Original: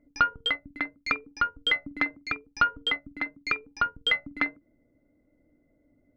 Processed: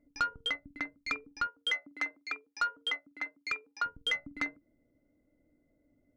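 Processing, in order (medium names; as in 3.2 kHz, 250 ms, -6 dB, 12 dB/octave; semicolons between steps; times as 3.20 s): 1.47–3.85 s: high-pass 440 Hz 12 dB/octave; saturation -18 dBFS, distortion -15 dB; trim -5 dB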